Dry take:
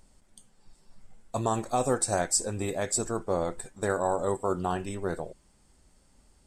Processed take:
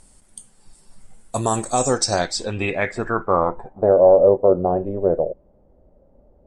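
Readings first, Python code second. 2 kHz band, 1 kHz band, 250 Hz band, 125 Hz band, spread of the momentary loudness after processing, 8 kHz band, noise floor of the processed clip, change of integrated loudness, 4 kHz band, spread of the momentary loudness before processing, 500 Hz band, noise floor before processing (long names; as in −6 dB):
+9.5 dB, +8.0 dB, +7.5 dB, +6.5 dB, 12 LU, +2.5 dB, −56 dBFS, +10.5 dB, +10.5 dB, 8 LU, +13.5 dB, −63 dBFS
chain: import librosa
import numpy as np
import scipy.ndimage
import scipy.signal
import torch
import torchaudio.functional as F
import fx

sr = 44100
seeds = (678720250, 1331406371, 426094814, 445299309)

y = fx.filter_sweep_lowpass(x, sr, from_hz=10000.0, to_hz=570.0, start_s=1.52, end_s=3.99, q=4.6)
y = y * librosa.db_to_amplitude(6.5)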